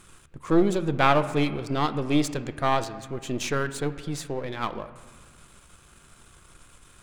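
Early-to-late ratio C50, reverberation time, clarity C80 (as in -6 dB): 13.5 dB, 1.6 s, 15.0 dB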